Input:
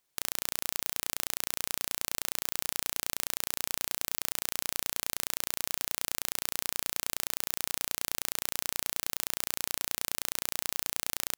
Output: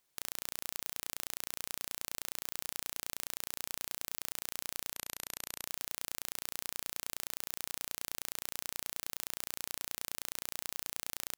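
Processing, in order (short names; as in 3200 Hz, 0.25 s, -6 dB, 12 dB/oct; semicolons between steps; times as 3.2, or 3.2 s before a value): limiter -10.5 dBFS, peak gain reduction 7 dB; 4.93–5.66 brick-wall FIR low-pass 14000 Hz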